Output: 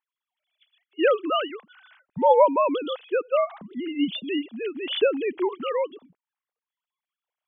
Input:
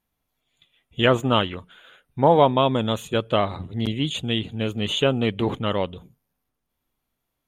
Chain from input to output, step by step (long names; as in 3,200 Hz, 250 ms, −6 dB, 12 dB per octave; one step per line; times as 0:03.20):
three sine waves on the formant tracks
level −2 dB